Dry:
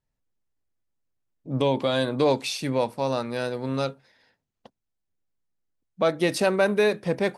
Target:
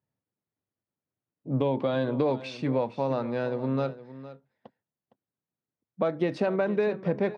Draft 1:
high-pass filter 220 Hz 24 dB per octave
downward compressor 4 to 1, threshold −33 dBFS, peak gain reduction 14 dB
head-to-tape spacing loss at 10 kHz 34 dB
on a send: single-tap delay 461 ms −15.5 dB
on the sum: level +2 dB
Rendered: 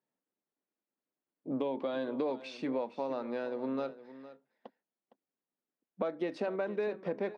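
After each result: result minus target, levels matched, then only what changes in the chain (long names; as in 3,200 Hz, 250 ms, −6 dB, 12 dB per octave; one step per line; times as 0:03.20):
125 Hz band −11.0 dB; downward compressor: peak gain reduction +8 dB
change: high-pass filter 100 Hz 24 dB per octave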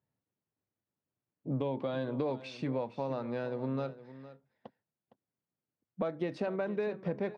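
downward compressor: peak gain reduction +8 dB
change: downward compressor 4 to 1, threshold −22.5 dBFS, peak gain reduction 6.5 dB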